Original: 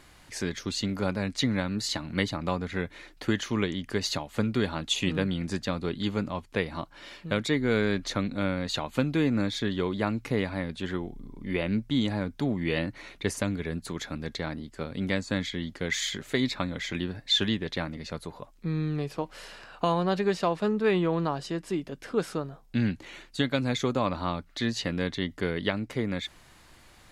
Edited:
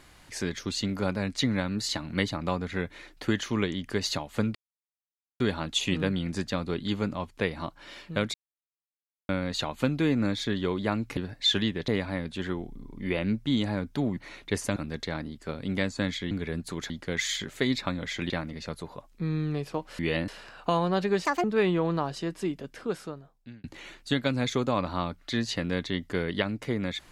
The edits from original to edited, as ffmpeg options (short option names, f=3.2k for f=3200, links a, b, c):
-filter_complex "[0:a]asplit=16[a][b][c][d][e][f][g][h][i][j][k][l][m][n][o][p];[a]atrim=end=4.55,asetpts=PTS-STARTPTS,afade=t=out:st=4.546:d=0.004:c=hsin,apad=pad_dur=0.85[q];[b]atrim=start=4.55:end=7.49,asetpts=PTS-STARTPTS,afade=t=in:d=0.004:c=hsin,afade=t=out:st=2.936:d=0.004:c=hsin[r];[c]atrim=start=7.49:end=8.44,asetpts=PTS-STARTPTS,volume=0[s];[d]atrim=start=8.44:end=10.322,asetpts=PTS-STARTPTS,afade=t=in:d=0.004:c=hsin[t];[e]atrim=start=17.028:end=17.742[u];[f]atrim=start=10.318:end=12.612[v];[g]atrim=start=12.898:end=13.492[w];[h]atrim=start=14.078:end=15.632[x];[i]atrim=start=13.488:end=14.082[y];[j]atrim=start=15.628:end=17.032[z];[k]atrim=start=17.738:end=19.432[aa];[l]atrim=start=12.608:end=12.902[ab];[m]atrim=start=19.428:end=20.404[ac];[n]atrim=start=20.4:end=20.72,asetpts=PTS-STARTPTS,asetrate=74529,aresample=44100,atrim=end_sample=8350,asetpts=PTS-STARTPTS[ad];[o]atrim=start=20.716:end=22.92,asetpts=PTS-STARTPTS,afade=t=out:st=1.054:d=1.15[ae];[p]atrim=start=22.92,asetpts=PTS-STARTPTS,afade=t=in:d=0.004:c=hsin[af];[q][r][s][t]concat=n=4:v=0:a=1[ag];[ag][u]acrossfade=d=0.004:c1=hsin:c2=hsin[ah];[ah][v]acrossfade=d=0.004:c1=hsin:c2=hsin[ai];[ai][w]acrossfade=d=0.004:c1=hsin:c2=hsin[aj];[aj][x]acrossfade=d=0.004:c1=hsin:c2=hsin[ak];[ak][y]acrossfade=d=0.004:c1=hsin:c2=hsin[al];[al][z]acrossfade=d=0.004:c1=hsin:c2=hsin[am];[am][aa]acrossfade=d=0.004:c1=hsin:c2=hsin[an];[an][ab]acrossfade=d=0.004:c1=hsin:c2=hsin[ao];[ao][ac]acrossfade=d=0.004:c1=hsin:c2=hsin[ap];[ap][ad]acrossfade=d=0.004:c1=hsin:c2=hsin[aq];[ae][af]concat=n=2:v=0:a=1[ar];[aq][ar]acrossfade=d=0.004:c1=hsin:c2=hsin"